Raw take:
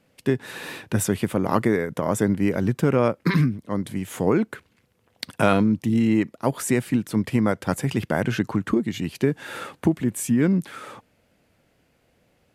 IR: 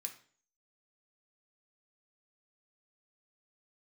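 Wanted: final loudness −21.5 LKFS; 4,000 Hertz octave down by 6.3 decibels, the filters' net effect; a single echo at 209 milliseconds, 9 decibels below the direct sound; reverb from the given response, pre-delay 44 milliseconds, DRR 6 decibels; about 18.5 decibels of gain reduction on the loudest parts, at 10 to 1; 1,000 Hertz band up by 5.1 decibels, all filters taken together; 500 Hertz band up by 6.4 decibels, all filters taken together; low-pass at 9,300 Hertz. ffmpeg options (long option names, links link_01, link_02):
-filter_complex "[0:a]lowpass=9300,equalizer=frequency=500:width_type=o:gain=7,equalizer=frequency=1000:width_type=o:gain=5,equalizer=frequency=4000:width_type=o:gain=-9,acompressor=threshold=-28dB:ratio=10,aecho=1:1:209:0.355,asplit=2[link_01][link_02];[1:a]atrim=start_sample=2205,adelay=44[link_03];[link_02][link_03]afir=irnorm=-1:irlink=0,volume=-2dB[link_04];[link_01][link_04]amix=inputs=2:normalize=0,volume=11.5dB"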